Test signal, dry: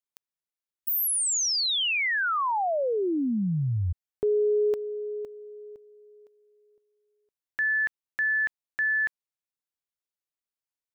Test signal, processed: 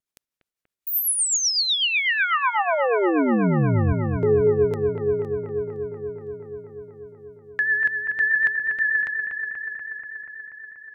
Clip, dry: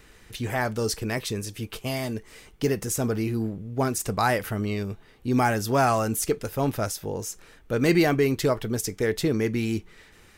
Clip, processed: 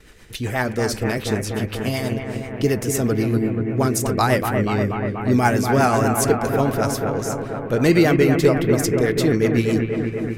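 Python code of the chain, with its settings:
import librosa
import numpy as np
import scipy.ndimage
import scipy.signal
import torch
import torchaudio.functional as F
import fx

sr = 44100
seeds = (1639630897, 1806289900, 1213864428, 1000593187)

y = fx.vibrato(x, sr, rate_hz=0.51, depth_cents=11.0)
y = fx.rotary(y, sr, hz=8.0)
y = fx.echo_bbd(y, sr, ms=241, stages=4096, feedback_pct=78, wet_db=-6.0)
y = y * 10.0 ** (6.5 / 20.0)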